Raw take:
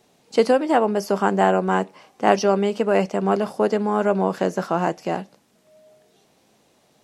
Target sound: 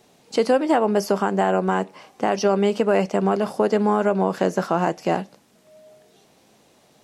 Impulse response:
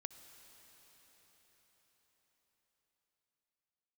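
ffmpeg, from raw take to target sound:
-af "alimiter=limit=0.266:level=0:latency=1:release=219,volume=1.5"

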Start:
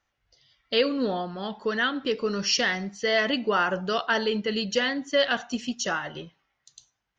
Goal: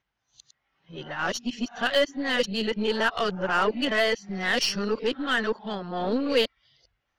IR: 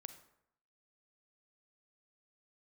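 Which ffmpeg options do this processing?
-af "areverse,lowpass=5500,aeval=exprs='0.282*(cos(1*acos(clip(val(0)/0.282,-1,1)))-cos(1*PI/2))+0.0126*(cos(8*acos(clip(val(0)/0.282,-1,1)))-cos(8*PI/2))':c=same"

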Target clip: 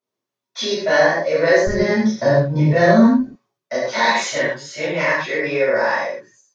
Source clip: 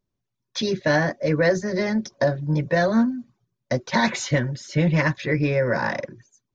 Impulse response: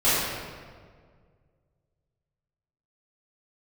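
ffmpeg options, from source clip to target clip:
-filter_complex "[0:a]asetnsamples=n=441:p=0,asendcmd='1.67 highpass f 91;3.19 highpass f 480',highpass=390[s0];[1:a]atrim=start_sample=2205,afade=t=out:st=0.21:d=0.01,atrim=end_sample=9702[s1];[s0][s1]afir=irnorm=-1:irlink=0,volume=0.316"

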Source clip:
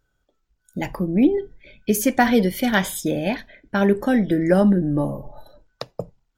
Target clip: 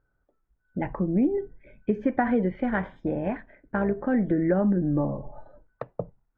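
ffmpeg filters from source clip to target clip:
-filter_complex "[0:a]lowpass=f=1800:w=0.5412,lowpass=f=1800:w=1.3066,acompressor=threshold=0.141:ratio=6,asettb=1/sr,asplit=3[s0][s1][s2];[s0]atrim=end=2.564[s3];[s1]atrim=start=2.56:end=4.12,asetpts=PTS-STARTPTS,afade=t=in:d=0.004:c=qsin,afade=t=out:st=1.556:d=0.004:c=qsin,tremolo=f=260:d=0.462[s4];[s2]atrim=start=4.116[s5];[s3][s4]acrossfade=d=0.004:c1=hsin:c2=qsin[s6];[s6][s5]acrossfade=d=0.004:c1=qsin:c2=hsin,volume=0.794"

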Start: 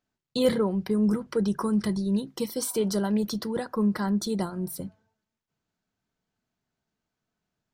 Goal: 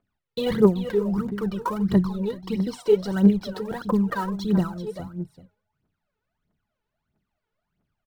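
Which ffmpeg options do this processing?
-filter_complex "[0:a]lowpass=3000,acrossover=split=890[s0][s1];[s1]acrusher=bits=3:mode=log:mix=0:aa=0.000001[s2];[s0][s2]amix=inputs=2:normalize=0,aecho=1:1:369:0.282,aphaser=in_gain=1:out_gain=1:delay=2.3:decay=0.77:speed=1.6:type=triangular,asetrate=42336,aresample=44100"

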